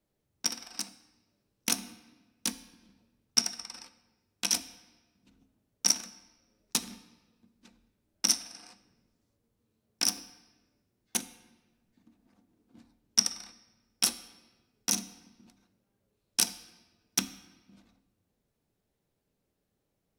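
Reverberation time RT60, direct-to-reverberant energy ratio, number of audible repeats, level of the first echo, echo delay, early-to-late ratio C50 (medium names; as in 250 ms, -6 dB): 1.2 s, 11.0 dB, no echo, no echo, no echo, 14.5 dB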